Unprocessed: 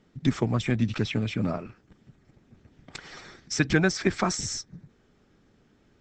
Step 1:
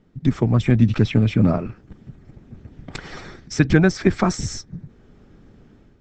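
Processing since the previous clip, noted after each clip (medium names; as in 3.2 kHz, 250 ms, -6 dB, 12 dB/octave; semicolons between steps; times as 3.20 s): tilt EQ -2 dB/octave; level rider gain up to 8.5 dB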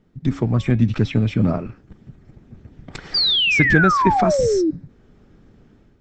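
painted sound fall, 3.14–4.71 s, 300–4900 Hz -16 dBFS; de-hum 277.5 Hz, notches 19; trim -1.5 dB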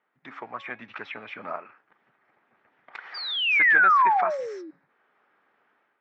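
Butterworth band-pass 1.4 kHz, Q 0.91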